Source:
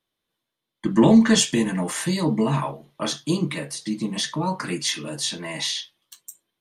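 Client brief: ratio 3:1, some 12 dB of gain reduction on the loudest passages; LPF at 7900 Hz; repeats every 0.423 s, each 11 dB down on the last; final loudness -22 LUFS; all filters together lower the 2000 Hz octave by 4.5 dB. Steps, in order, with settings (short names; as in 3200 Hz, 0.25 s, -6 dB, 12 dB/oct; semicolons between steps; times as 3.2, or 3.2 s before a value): LPF 7900 Hz; bell 2000 Hz -5.5 dB; compressor 3:1, threshold -27 dBFS; feedback echo 0.423 s, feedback 28%, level -11 dB; gain +8 dB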